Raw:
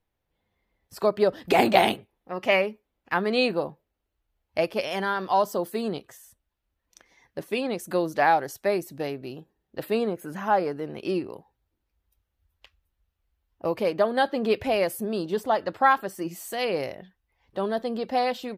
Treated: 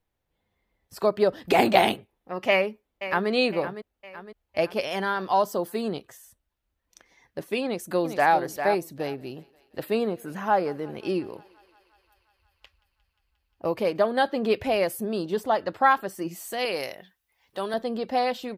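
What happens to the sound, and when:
2.50–3.30 s: echo throw 510 ms, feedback 50%, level -11.5 dB
7.64–8.34 s: echo throw 400 ms, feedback 15%, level -8 dB
8.85–14.06 s: thinning echo 177 ms, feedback 82%, high-pass 450 Hz, level -23 dB
16.65–17.74 s: tilt EQ +3 dB/octave

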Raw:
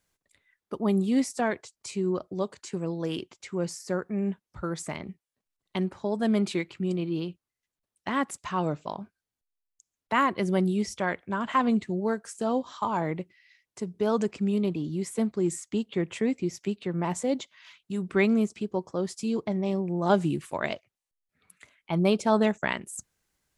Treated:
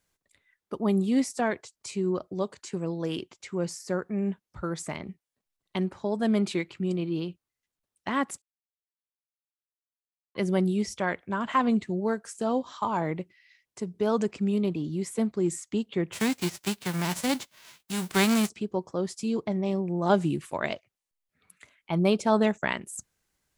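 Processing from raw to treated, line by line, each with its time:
8.42–10.35 s: mute
16.12–18.48 s: formants flattened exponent 0.3

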